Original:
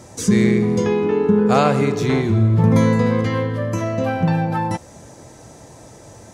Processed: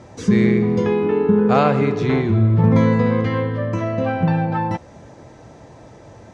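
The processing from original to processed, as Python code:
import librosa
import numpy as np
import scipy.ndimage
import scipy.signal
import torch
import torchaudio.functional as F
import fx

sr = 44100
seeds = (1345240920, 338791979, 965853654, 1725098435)

y = scipy.signal.sosfilt(scipy.signal.butter(2, 3400.0, 'lowpass', fs=sr, output='sos'), x)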